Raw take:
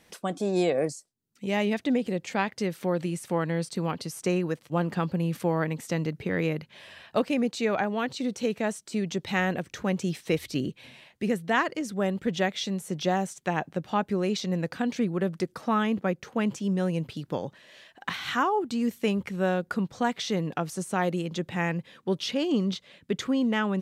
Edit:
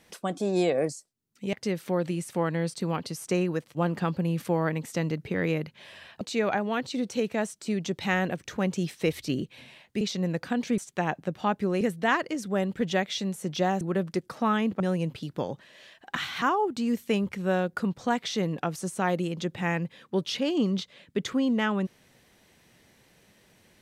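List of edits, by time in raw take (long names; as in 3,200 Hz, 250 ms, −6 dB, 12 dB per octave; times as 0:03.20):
0:01.53–0:02.48: remove
0:07.16–0:07.47: remove
0:11.27–0:13.27: swap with 0:14.30–0:15.07
0:16.06–0:16.74: remove
0:18.10–0:18.36: reverse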